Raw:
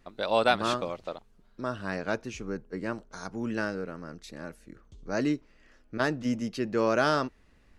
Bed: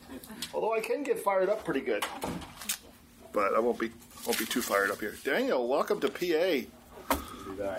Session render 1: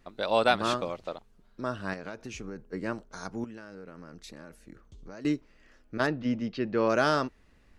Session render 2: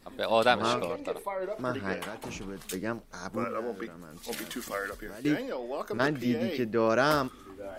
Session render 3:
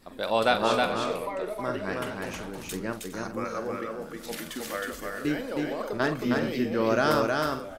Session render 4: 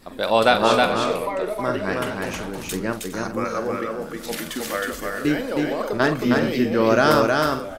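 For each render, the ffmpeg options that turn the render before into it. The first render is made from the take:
-filter_complex "[0:a]asettb=1/sr,asplit=3[s0][s1][s2];[s0]atrim=end=1.934[s3];[s1]atrim=start=1.93:end=2.7,asetpts=PTS-STARTPTS,afade=t=in:d=0.004:c=qsin,afade=t=out:st=0.766:d=0.004:c=qsin,acompressor=threshold=0.02:ratio=8:attack=3.2:release=140:knee=1:detection=peak[s4];[s2]atrim=start=2.696[s5];[s3][s4]acrossfade=d=0.004:c1=hsin:c2=qsin[s6];[s6][s5]acrossfade=d=0.004:c1=qsin:c2=hsin,asettb=1/sr,asplit=3[s7][s8][s9];[s7]atrim=end=3.444[s10];[s8]atrim=start=3.44:end=5.25,asetpts=PTS-STARTPTS,afade=t=in:d=0.004:c=qsin,afade=t=out:st=1.806:d=0.004:c=qsin,acompressor=threshold=0.01:ratio=8:attack=3.2:release=140:knee=1:detection=peak[s11];[s9]atrim=start=5.246[s12];[s10][s11]acrossfade=d=0.004:c1=hsin:c2=qsin[s13];[s13][s12]acrossfade=d=0.004:c1=qsin:c2=hsin,asplit=3[s14][s15][s16];[s14]afade=t=out:st=6.06:d=0.02[s17];[s15]lowpass=f=4500:w=0.5412,lowpass=f=4500:w=1.3066,afade=t=in:st=6.06:d=0.02,afade=t=out:st=6.88:d=0.02[s18];[s16]afade=t=in:st=6.88:d=0.02[s19];[s17][s18][s19]amix=inputs=3:normalize=0"
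-filter_complex "[1:a]volume=0.447[s0];[0:a][s0]amix=inputs=2:normalize=0"
-filter_complex "[0:a]asplit=2[s0][s1];[s1]adelay=45,volume=0.282[s2];[s0][s2]amix=inputs=2:normalize=0,aecho=1:1:316|412:0.708|0.188"
-af "volume=2.24,alimiter=limit=0.891:level=0:latency=1"

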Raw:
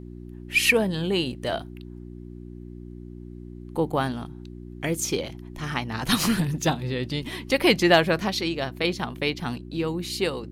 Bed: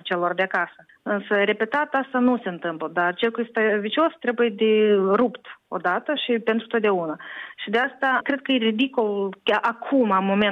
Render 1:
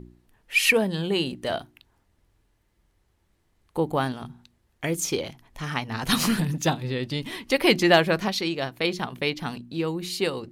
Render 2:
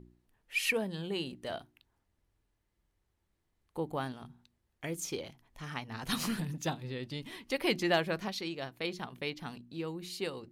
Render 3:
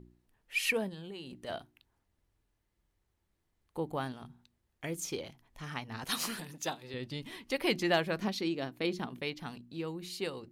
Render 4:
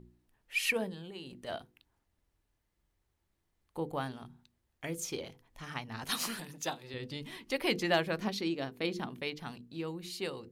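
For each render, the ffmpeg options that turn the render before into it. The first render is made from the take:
-af "bandreject=f=60:t=h:w=4,bandreject=f=120:t=h:w=4,bandreject=f=180:t=h:w=4,bandreject=f=240:t=h:w=4,bandreject=f=300:t=h:w=4,bandreject=f=360:t=h:w=4"
-af "volume=0.282"
-filter_complex "[0:a]asplit=3[s0][s1][s2];[s0]afade=t=out:st=0.88:d=0.02[s3];[s1]acompressor=threshold=0.01:ratio=10:attack=3.2:release=140:knee=1:detection=peak,afade=t=in:st=0.88:d=0.02,afade=t=out:st=1.47:d=0.02[s4];[s2]afade=t=in:st=1.47:d=0.02[s5];[s3][s4][s5]amix=inputs=3:normalize=0,asettb=1/sr,asplit=3[s6][s7][s8];[s6]atrim=end=6.044[s9];[s7]atrim=start=6.04:end=6.94,asetpts=PTS-STARTPTS,afade=t=in:d=0.004:c=qsin,afade=t=out:st=0.896:d=0.004:c=qsin,bass=f=250:g=-14,treble=f=4000:g=3[s10];[s8]atrim=start=6.936[s11];[s9][s10]acrossfade=d=0.004:c1=hsin:c2=qsin[s12];[s12][s11]acrossfade=d=0.004:c1=qsin:c2=hsin,asettb=1/sr,asplit=3[s13][s14][s15];[s13]atrim=end=8.194[s16];[s14]atrim=start=8.19:end=9.2,asetpts=PTS-STARTPTS,afade=t=in:d=0.004:c=qsin,afade=t=out:st=1.006:d=0.004:c=qsin,equalizer=f=270:t=o:w=1.2:g=8.5[s17];[s15]atrim=start=9.196[s18];[s16][s17]acrossfade=d=0.004:c1=hsin:c2=qsin[s19];[s19][s18]acrossfade=d=0.004:c1=qsin:c2=hsin"
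-af "bandreject=f=50:t=h:w=6,bandreject=f=100:t=h:w=6,bandreject=f=150:t=h:w=6,bandreject=f=200:t=h:w=6,bandreject=f=250:t=h:w=6,bandreject=f=300:t=h:w=6,bandreject=f=350:t=h:w=6,bandreject=f=400:t=h:w=6,bandreject=f=450:t=h:w=6,bandreject=f=500:t=h:w=6"

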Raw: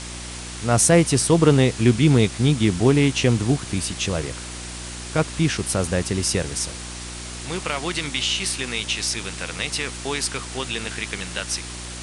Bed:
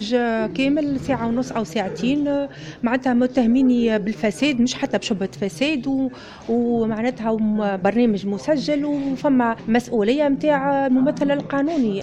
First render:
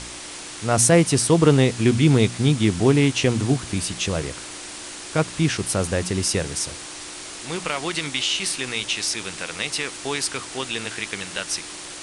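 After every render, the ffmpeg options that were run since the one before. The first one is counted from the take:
-af "bandreject=f=60:t=h:w=4,bandreject=f=120:t=h:w=4,bandreject=f=180:t=h:w=4,bandreject=f=240:t=h:w=4"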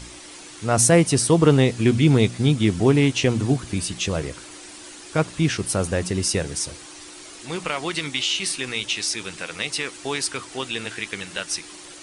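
-af "afftdn=nr=8:nf=-36"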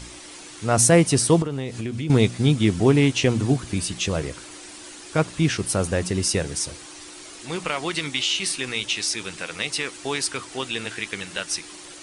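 -filter_complex "[0:a]asettb=1/sr,asplit=3[s0][s1][s2];[s0]atrim=end=1.424[s3];[s1]atrim=start=1.42:end=2.1,asetpts=PTS-STARTPTS,afade=t=in:d=0.004:c=qsin,afade=t=out:st=0.676:d=0.004:c=qsin,acompressor=threshold=0.0501:ratio=5:attack=3.2:release=140:knee=1:detection=peak[s4];[s2]atrim=start=2.096[s5];[s3][s4]acrossfade=d=0.004:c1=hsin:c2=qsin[s6];[s6][s5]acrossfade=d=0.004:c1=qsin:c2=hsin"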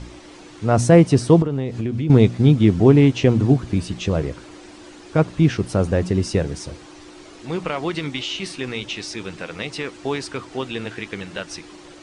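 -af "lowpass=6000,tiltshelf=f=1200:g=5.5"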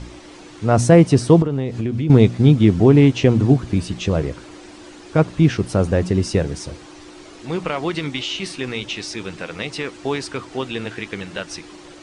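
-af "volume=1.19,alimiter=limit=0.794:level=0:latency=1"

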